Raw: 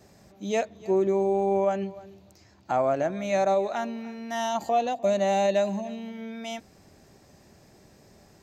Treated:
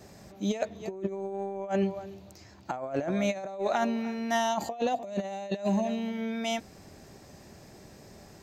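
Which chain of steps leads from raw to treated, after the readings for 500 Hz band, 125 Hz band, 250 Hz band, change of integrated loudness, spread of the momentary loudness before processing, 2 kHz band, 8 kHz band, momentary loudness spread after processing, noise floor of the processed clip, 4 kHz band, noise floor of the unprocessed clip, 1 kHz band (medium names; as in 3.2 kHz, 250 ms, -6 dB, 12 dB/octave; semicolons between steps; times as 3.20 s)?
-7.0 dB, 0.0 dB, +0.5 dB, -4.5 dB, 13 LU, -1.0 dB, -1.0 dB, 22 LU, -52 dBFS, 0.0 dB, -57 dBFS, -5.5 dB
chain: compressor with a negative ratio -29 dBFS, ratio -0.5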